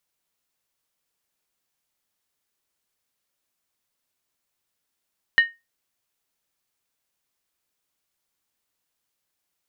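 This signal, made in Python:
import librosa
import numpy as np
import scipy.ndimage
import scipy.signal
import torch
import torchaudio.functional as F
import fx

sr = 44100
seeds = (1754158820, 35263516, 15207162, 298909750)

y = fx.strike_skin(sr, length_s=0.63, level_db=-8.5, hz=1850.0, decay_s=0.22, tilt_db=11.5, modes=5)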